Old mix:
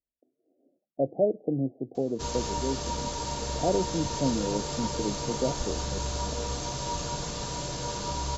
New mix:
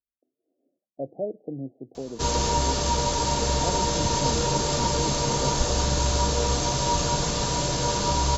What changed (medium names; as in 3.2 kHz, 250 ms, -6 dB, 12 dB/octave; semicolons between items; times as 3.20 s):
speech -6.0 dB; background +8.5 dB